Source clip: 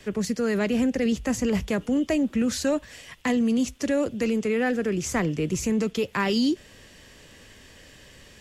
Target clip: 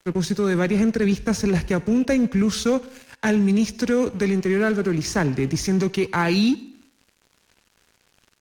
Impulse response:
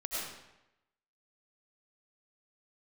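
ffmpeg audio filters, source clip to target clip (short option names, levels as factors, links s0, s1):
-filter_complex "[0:a]aeval=exprs='sgn(val(0))*max(abs(val(0))-0.00596,0)':c=same,asetrate=38170,aresample=44100,atempo=1.15535,asplit=2[s0][s1];[1:a]atrim=start_sample=2205,asetrate=61740,aresample=44100[s2];[s1][s2]afir=irnorm=-1:irlink=0,volume=0.133[s3];[s0][s3]amix=inputs=2:normalize=0,volume=1.58"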